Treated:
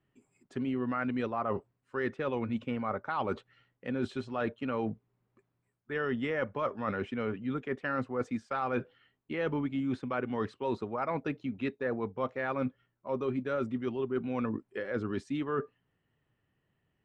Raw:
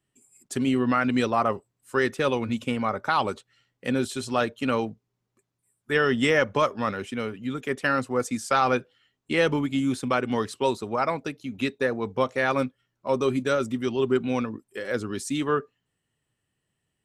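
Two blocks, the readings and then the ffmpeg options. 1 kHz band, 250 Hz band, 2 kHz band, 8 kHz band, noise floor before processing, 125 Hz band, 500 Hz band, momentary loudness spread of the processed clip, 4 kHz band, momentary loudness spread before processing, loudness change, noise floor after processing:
-9.5 dB, -7.0 dB, -10.5 dB, under -25 dB, -80 dBFS, -6.5 dB, -8.0 dB, 5 LU, -16.0 dB, 9 LU, -8.5 dB, -80 dBFS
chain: -af "lowpass=2200,areverse,acompressor=threshold=0.0224:ratio=6,areverse,volume=1.41"

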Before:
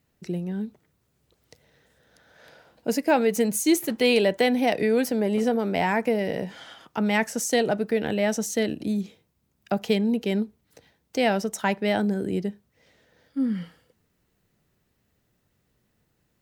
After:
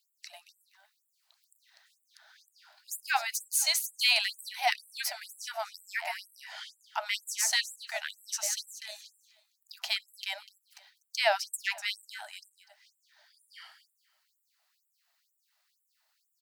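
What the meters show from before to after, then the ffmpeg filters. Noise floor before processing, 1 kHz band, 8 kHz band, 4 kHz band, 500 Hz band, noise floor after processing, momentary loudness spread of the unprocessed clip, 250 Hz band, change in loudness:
-72 dBFS, -6.5 dB, +1.0 dB, +2.5 dB, -17.5 dB, -79 dBFS, 12 LU, under -40 dB, -6.0 dB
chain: -af "equalizer=f=4500:t=o:w=0.44:g=8,aecho=1:1:246|492|738:0.2|0.0459|0.0106,afftfilt=real='re*gte(b*sr/1024,570*pow(7400/570,0.5+0.5*sin(2*PI*2.1*pts/sr)))':imag='im*gte(b*sr/1024,570*pow(7400/570,0.5+0.5*sin(2*PI*2.1*pts/sr)))':win_size=1024:overlap=0.75"

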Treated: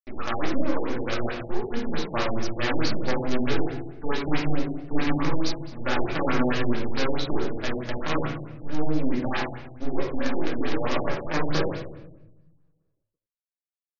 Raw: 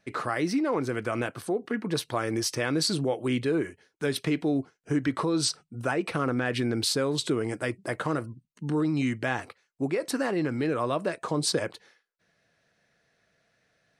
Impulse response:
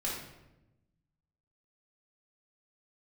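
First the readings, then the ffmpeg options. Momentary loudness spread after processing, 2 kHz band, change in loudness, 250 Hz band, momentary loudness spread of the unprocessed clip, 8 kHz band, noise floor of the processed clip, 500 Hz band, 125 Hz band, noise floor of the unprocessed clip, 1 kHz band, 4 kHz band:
6 LU, +1.5 dB, 0.0 dB, 0.0 dB, 6 LU, -11.0 dB, under -85 dBFS, 0.0 dB, +0.5 dB, -73 dBFS, +2.5 dB, -2.0 dB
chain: -filter_complex "[0:a]acrusher=bits=4:dc=4:mix=0:aa=0.000001[s0];[1:a]atrim=start_sample=2205[s1];[s0][s1]afir=irnorm=-1:irlink=0,afftfilt=real='re*lt(b*sr/1024,850*pow(7000/850,0.5+0.5*sin(2*PI*4.6*pts/sr)))':imag='im*lt(b*sr/1024,850*pow(7000/850,0.5+0.5*sin(2*PI*4.6*pts/sr)))':win_size=1024:overlap=0.75,volume=0.841"

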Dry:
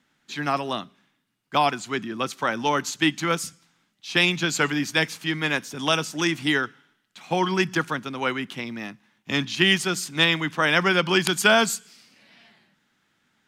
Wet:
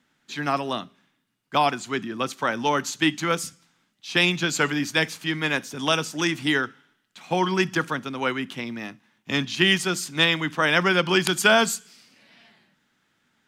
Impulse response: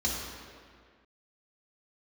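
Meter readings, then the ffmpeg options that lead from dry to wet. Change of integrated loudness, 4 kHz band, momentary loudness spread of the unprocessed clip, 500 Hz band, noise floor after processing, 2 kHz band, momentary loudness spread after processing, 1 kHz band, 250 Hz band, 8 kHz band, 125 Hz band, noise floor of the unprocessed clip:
0.0 dB, -0.5 dB, 13 LU, +0.5 dB, -70 dBFS, 0.0 dB, 12 LU, 0.0 dB, 0.0 dB, 0.0 dB, 0.0 dB, -70 dBFS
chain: -filter_complex "[0:a]asplit=2[s0][s1];[1:a]atrim=start_sample=2205,atrim=end_sample=3528[s2];[s1][s2]afir=irnorm=-1:irlink=0,volume=0.0531[s3];[s0][s3]amix=inputs=2:normalize=0"

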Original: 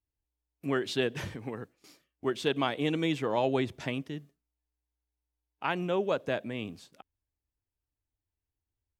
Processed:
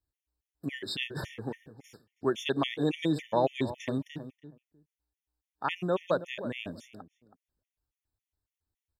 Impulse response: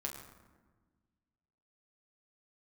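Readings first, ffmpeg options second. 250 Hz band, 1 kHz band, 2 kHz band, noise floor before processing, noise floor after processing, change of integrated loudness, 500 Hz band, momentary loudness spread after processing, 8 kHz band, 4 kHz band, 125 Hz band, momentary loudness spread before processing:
0.0 dB, 0.0 dB, -2.0 dB, under -85 dBFS, under -85 dBFS, -0.5 dB, -1.0 dB, 14 LU, -1.5 dB, 0.0 dB, 0.0 dB, 13 LU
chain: -filter_complex "[0:a]asplit=2[s0][s1];[s1]adelay=323,lowpass=f=1300:p=1,volume=0.251,asplit=2[s2][s3];[s3]adelay=323,lowpass=f=1300:p=1,volume=0.16[s4];[s2][s4]amix=inputs=2:normalize=0[s5];[s0][s5]amix=inputs=2:normalize=0,afftfilt=real='re*gt(sin(2*PI*3.6*pts/sr)*(1-2*mod(floor(b*sr/1024/1800),2)),0)':imag='im*gt(sin(2*PI*3.6*pts/sr)*(1-2*mod(floor(b*sr/1024/1800),2)),0)':win_size=1024:overlap=0.75,volume=1.33"

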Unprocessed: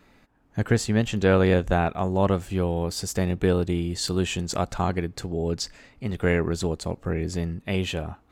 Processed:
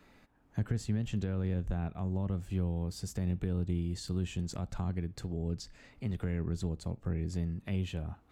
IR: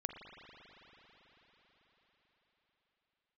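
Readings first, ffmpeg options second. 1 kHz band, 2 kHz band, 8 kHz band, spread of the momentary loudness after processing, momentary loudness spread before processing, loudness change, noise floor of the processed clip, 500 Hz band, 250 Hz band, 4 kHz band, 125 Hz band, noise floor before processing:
-19.5 dB, -19.0 dB, -14.5 dB, 5 LU, 9 LU, -10.0 dB, -64 dBFS, -18.0 dB, -9.5 dB, -15.5 dB, -6.5 dB, -59 dBFS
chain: -filter_complex "[0:a]alimiter=limit=0.188:level=0:latency=1:release=63,acrossover=split=220[s0][s1];[s1]acompressor=threshold=0.00891:ratio=4[s2];[s0][s2]amix=inputs=2:normalize=0,asplit=2[s3][s4];[1:a]atrim=start_sample=2205,atrim=end_sample=3528[s5];[s4][s5]afir=irnorm=-1:irlink=0,volume=0.596[s6];[s3][s6]amix=inputs=2:normalize=0,volume=0.447"

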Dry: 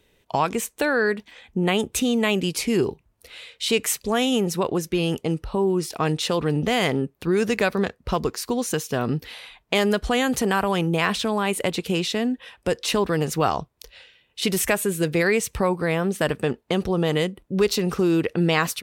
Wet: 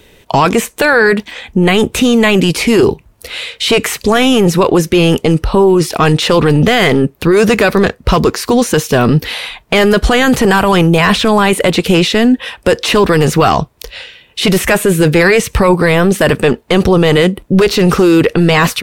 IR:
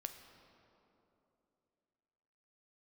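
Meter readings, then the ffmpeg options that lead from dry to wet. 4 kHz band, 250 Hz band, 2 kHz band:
+12.0 dB, +13.0 dB, +13.0 dB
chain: -filter_complex "[0:a]apsyclip=12.6,acrossover=split=3100[s0][s1];[s1]acompressor=threshold=0.158:ratio=4:attack=1:release=60[s2];[s0][s2]amix=inputs=2:normalize=0,volume=0.668"

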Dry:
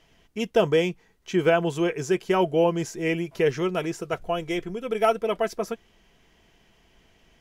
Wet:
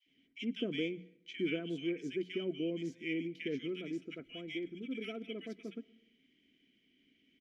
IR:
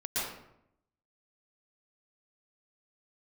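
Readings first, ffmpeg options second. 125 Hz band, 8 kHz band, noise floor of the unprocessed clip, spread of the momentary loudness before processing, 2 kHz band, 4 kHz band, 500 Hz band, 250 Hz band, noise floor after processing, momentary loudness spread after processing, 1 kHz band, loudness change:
-16.0 dB, under -20 dB, -62 dBFS, 10 LU, -12.5 dB, -9.0 dB, -17.5 dB, -10.0 dB, -73 dBFS, 10 LU, -32.0 dB, -14.5 dB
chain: -filter_complex "[0:a]asplit=3[s0][s1][s2];[s0]bandpass=f=270:t=q:w=8,volume=1[s3];[s1]bandpass=f=2290:t=q:w=8,volume=0.501[s4];[s2]bandpass=f=3010:t=q:w=8,volume=0.355[s5];[s3][s4][s5]amix=inputs=3:normalize=0,adynamicequalizer=threshold=0.00141:dfrequency=1400:dqfactor=0.83:tfrequency=1400:tqfactor=0.83:attack=5:release=100:ratio=0.375:range=2.5:mode=cutabove:tftype=bell,bandreject=f=60:t=h:w=6,bandreject=f=120:t=h:w=6,bandreject=f=180:t=h:w=6,acrossover=split=1600[s6][s7];[s6]adelay=60[s8];[s8][s7]amix=inputs=2:normalize=0,asplit=2[s9][s10];[1:a]atrim=start_sample=2205[s11];[s10][s11]afir=irnorm=-1:irlink=0,volume=0.0376[s12];[s9][s12]amix=inputs=2:normalize=0,volume=1.26"

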